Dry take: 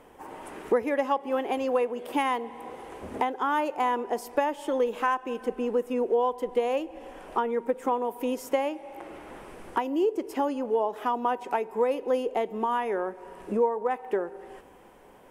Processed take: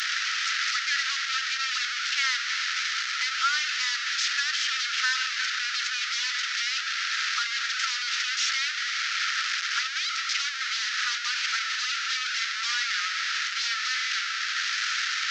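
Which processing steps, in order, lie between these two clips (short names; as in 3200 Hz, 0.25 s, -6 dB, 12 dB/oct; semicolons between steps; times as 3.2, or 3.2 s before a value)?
delta modulation 32 kbps, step -23 dBFS; rippled Chebyshev high-pass 1300 Hz, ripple 3 dB; gain +8.5 dB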